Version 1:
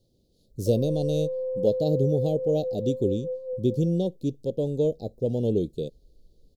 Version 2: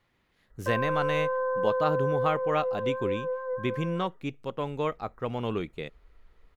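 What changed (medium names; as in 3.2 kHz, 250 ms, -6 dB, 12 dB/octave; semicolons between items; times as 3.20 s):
speech -7.5 dB; master: remove elliptic band-stop 540–4300 Hz, stop band 60 dB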